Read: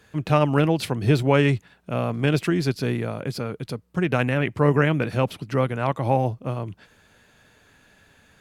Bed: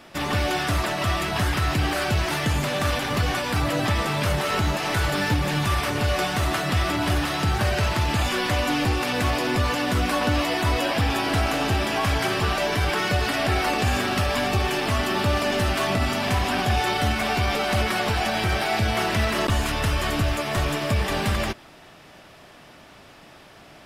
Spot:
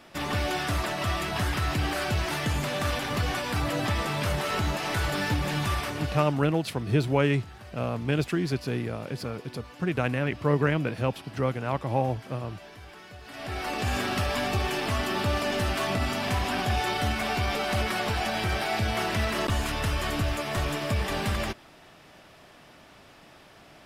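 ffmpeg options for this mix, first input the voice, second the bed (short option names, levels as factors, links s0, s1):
-filter_complex "[0:a]adelay=5850,volume=0.562[s0];[1:a]volume=5.31,afade=t=out:st=5.69:d=0.71:silence=0.112202,afade=t=in:st=13.24:d=0.76:silence=0.112202[s1];[s0][s1]amix=inputs=2:normalize=0"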